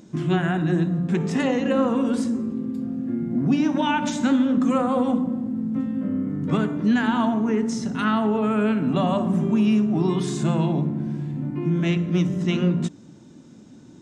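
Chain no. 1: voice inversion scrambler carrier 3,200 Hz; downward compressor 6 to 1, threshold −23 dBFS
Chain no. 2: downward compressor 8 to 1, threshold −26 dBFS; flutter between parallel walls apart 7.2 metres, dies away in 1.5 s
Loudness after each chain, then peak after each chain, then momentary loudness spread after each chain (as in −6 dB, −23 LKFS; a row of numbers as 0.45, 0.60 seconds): −23.5, −24.5 LKFS; −14.5, −12.0 dBFS; 2, 7 LU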